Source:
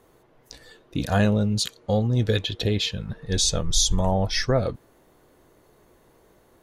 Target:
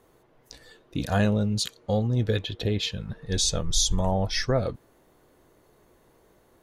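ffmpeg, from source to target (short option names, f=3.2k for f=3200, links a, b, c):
-filter_complex "[0:a]asettb=1/sr,asplit=3[a][b][c];[a]atrim=end=2.154[d];[b]atrim=start=2.15:end=2.83,asetpts=PTS-STARTPTS,afade=t=in:d=0.004:c=qsin,afade=t=out:st=0.676:d=0.004:c=qsin,equalizer=f=6.9k:t=o:w=2.2:g=-5.5[e];[c]atrim=start=2.826[f];[d][e]acrossfade=d=0.004:c1=hsin:c2=qsin[g];[g][f]acrossfade=d=0.004:c1=qsin:c2=hsin,volume=-2.5dB"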